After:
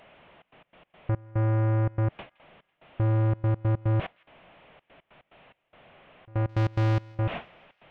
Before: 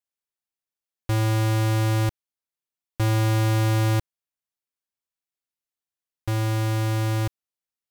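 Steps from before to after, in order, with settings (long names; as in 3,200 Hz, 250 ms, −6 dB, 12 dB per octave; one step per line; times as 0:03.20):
linear delta modulator 16 kbit/s, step −32.5 dBFS
noise gate with hold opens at −27 dBFS
graphic EQ with 15 bands 160 Hz +7 dB, 630 Hz +9 dB, 1,600 Hz −3 dB
in parallel at −2 dB: brickwall limiter −26.5 dBFS, peak gain reduction 14.5 dB
0:06.49–0:07.12: on the sum: leveller curve on the samples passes 2
soft clipping −19.5 dBFS, distortion −13 dB
gate pattern "xxxx.x.x.xx..x" 144 BPM −24 dB
on a send: delay with a high-pass on its return 166 ms, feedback 60%, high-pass 1,600 Hz, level −22.5 dB
on the sum: level −1 dB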